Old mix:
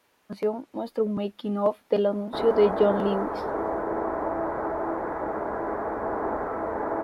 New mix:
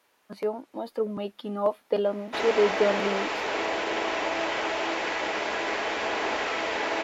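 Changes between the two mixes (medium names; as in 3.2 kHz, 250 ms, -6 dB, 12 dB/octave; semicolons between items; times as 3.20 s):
background: remove inverse Chebyshev low-pass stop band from 2.7 kHz, stop band 40 dB; master: add bass shelf 220 Hz -11 dB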